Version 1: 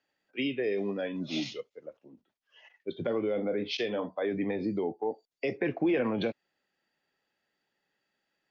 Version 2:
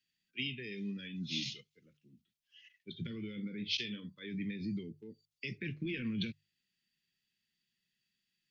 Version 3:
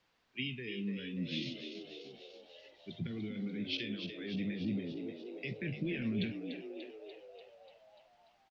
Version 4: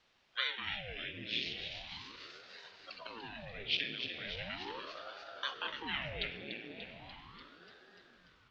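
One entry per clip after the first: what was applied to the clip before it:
Chebyshev band-stop 180–3000 Hz, order 2; bell 280 Hz -8 dB 0.26 oct; notches 50/100/150 Hz; gain +1 dB
added noise white -69 dBFS; air absorption 230 m; on a send: frequency-shifting echo 0.293 s, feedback 62%, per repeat +70 Hz, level -8 dB; on the sum: gain +2 dB
band-pass 2200 Hz, Q 0.7; reverb RT60 5.0 s, pre-delay 23 ms, DRR 8.5 dB; ring modulator with a swept carrier 540 Hz, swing 90%, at 0.38 Hz; gain +9 dB

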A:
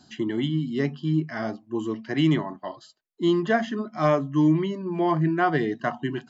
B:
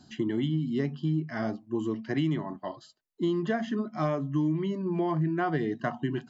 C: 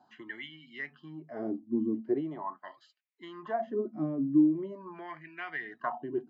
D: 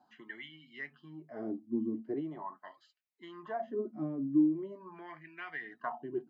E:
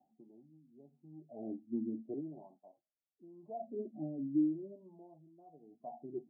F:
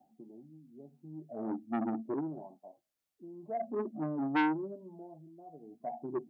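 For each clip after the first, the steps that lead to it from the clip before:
low shelf 340 Hz +6.5 dB; compressor 5:1, threshold -21 dBFS, peak gain reduction 9 dB; gain -3.5 dB
wah 0.42 Hz 250–2400 Hz, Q 4.8; gain +7.5 dB
flange 0.35 Hz, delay 3.6 ms, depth 6.2 ms, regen -59%
rippled Chebyshev low-pass 810 Hz, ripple 3 dB; gain -3 dB
core saturation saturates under 1200 Hz; gain +7.5 dB

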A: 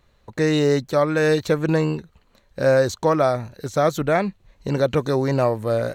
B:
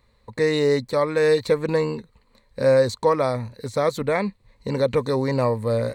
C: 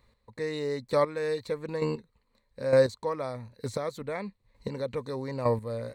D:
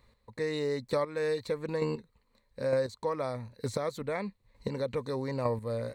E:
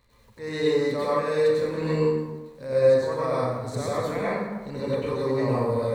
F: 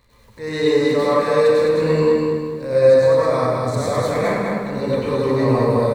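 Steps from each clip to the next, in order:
ripple EQ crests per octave 0.95, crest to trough 9 dB; gain -2.5 dB
chopper 1.1 Hz, depth 65%, duty 15%; gain -3 dB
compressor 5:1, threshold -27 dBFS, peak gain reduction 10.5 dB; gain +1 dB
transient shaper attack -8 dB, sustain -2 dB; crackle 120/s -53 dBFS; plate-style reverb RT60 1.3 s, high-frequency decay 0.55×, pre-delay 80 ms, DRR -8.5 dB
feedback echo 0.208 s, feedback 38%, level -4 dB; gain +6 dB

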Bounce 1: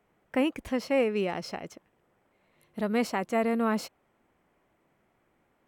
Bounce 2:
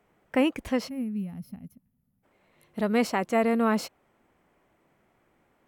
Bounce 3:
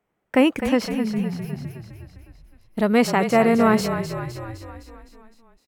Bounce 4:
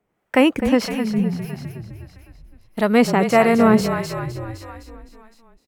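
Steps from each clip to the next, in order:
spectral gain 0.89–2.24, 270–10000 Hz -25 dB; gain +3 dB
gate -54 dBFS, range -15 dB; frequency-shifting echo 0.256 s, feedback 59%, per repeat -34 Hz, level -9 dB; gain +6.5 dB
harmonic tremolo 1.6 Hz, depth 50%, crossover 570 Hz; gain +5 dB

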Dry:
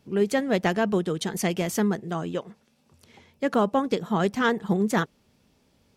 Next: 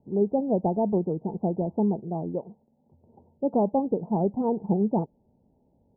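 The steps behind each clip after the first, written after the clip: Chebyshev low-pass 900 Hz, order 6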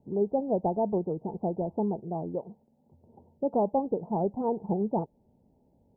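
dynamic EQ 210 Hz, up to -6 dB, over -35 dBFS, Q 0.78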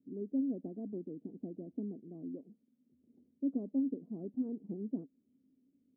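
vowel filter i; gain +2 dB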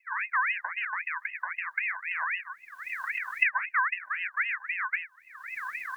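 recorder AGC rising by 48 dB/s; ring modulator with a swept carrier 1800 Hz, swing 30%, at 3.8 Hz; gain +8.5 dB

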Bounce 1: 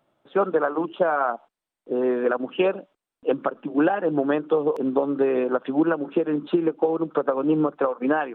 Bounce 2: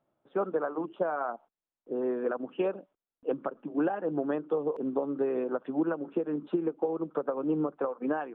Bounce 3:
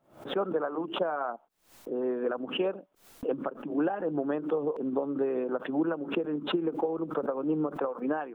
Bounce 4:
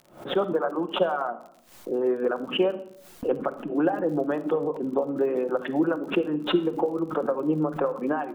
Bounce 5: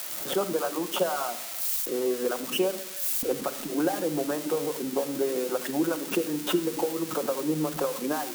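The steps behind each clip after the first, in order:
LPF 1200 Hz 6 dB/oct; gain -7.5 dB
backwards sustainer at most 130 dB/s
reverb removal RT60 0.52 s; shoebox room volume 2100 m³, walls furnished, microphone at 0.94 m; crackle 53/s -45 dBFS; gain +5 dB
switching spikes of -19.5 dBFS; gain -3 dB

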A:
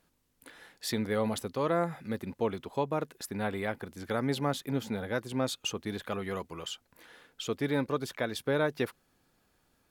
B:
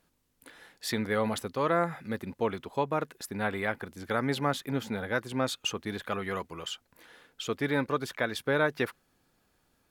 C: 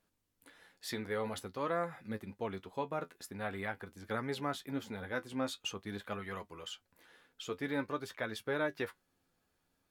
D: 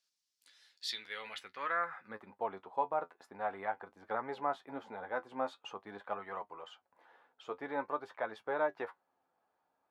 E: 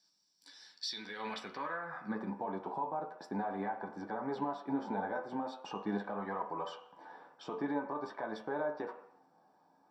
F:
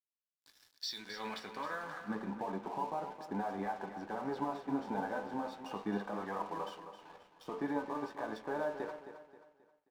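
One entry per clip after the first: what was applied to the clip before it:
dynamic EQ 1600 Hz, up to +6 dB, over -46 dBFS, Q 0.83
flange 0.48 Hz, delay 9.2 ms, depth 2.7 ms, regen +47%; gain -4 dB
band-pass sweep 5100 Hz -> 830 Hz, 0.63–2.38; gain +8.5 dB
compressor 3:1, threshold -43 dBFS, peak gain reduction 12 dB; limiter -38.5 dBFS, peak gain reduction 9 dB; reverb RT60 0.70 s, pre-delay 3 ms, DRR 2.5 dB
crossover distortion -55 dBFS; on a send: feedback echo 0.266 s, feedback 38%, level -10.5 dB

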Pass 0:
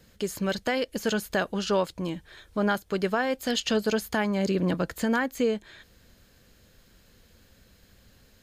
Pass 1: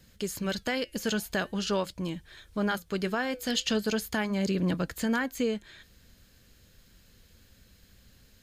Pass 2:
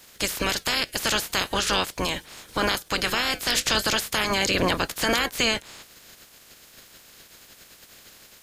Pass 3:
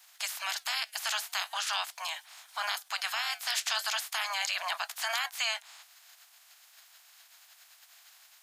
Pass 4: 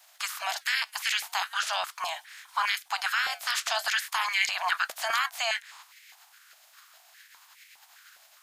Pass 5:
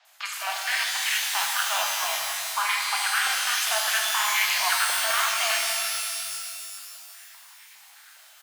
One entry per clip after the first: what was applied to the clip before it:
bell 660 Hz -6 dB 2.6 oct; flange 0.43 Hz, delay 1 ms, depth 4.4 ms, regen -89%; gain +5 dB
spectral limiter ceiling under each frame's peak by 27 dB; in parallel at +2.5 dB: limiter -20.5 dBFS, peak gain reduction 10.5 dB
steep high-pass 670 Hz 72 dB/oct; gain -7.5 dB
stepped high-pass 4.9 Hz 570–2100 Hz
bands offset in time lows, highs 50 ms, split 5000 Hz; shimmer reverb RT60 2.4 s, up +12 st, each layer -2 dB, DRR 0 dB

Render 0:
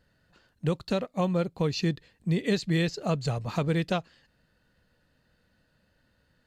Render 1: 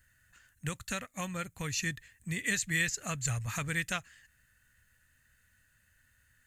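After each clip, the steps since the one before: EQ curve 110 Hz 0 dB, 170 Hz -12 dB, 260 Hz -11 dB, 390 Hz -18 dB, 930 Hz -10 dB, 1800 Hz +7 dB, 4700 Hz -7 dB, 6700 Hz +13 dB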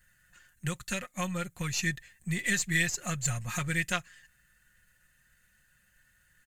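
half-wave gain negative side -3 dB; comb 5.6 ms; gain +2 dB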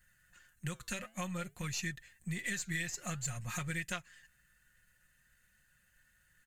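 compressor 3:1, threshold -32 dBFS, peak gain reduction 7.5 dB; flange 0.53 Hz, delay 0.8 ms, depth 7.2 ms, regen -89%; gain +1 dB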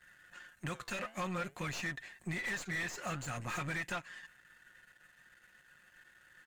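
half-wave gain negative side -12 dB; overdrive pedal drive 27 dB, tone 1400 Hz, clips at -21.5 dBFS; gain -3.5 dB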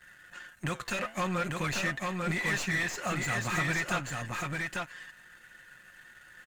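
echo 0.844 s -3 dB; gain +6.5 dB

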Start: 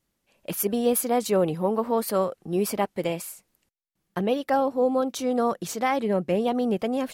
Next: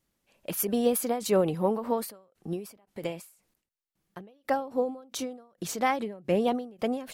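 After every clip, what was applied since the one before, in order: ending taper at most 120 dB/s; gain -1 dB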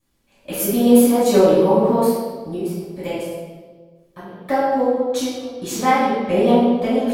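reverb RT60 1.5 s, pre-delay 5 ms, DRR -10.5 dB; gain -6 dB

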